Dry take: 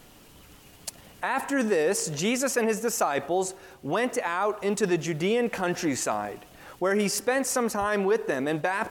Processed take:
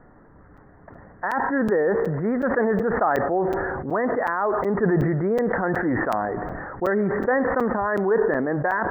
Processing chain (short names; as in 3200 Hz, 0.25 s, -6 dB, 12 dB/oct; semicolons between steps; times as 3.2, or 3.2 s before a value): steep low-pass 1900 Hz 96 dB/oct; crackling interface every 0.37 s, samples 256, zero, from 0.57; sustainer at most 22 dB/s; gain +2.5 dB